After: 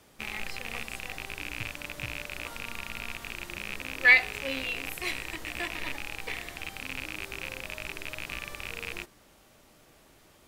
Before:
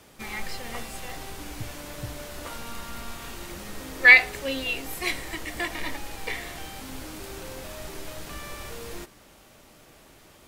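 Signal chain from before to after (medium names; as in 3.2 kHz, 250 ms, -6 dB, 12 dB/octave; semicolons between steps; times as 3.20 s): rattle on loud lows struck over -42 dBFS, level -16 dBFS; trim -5.5 dB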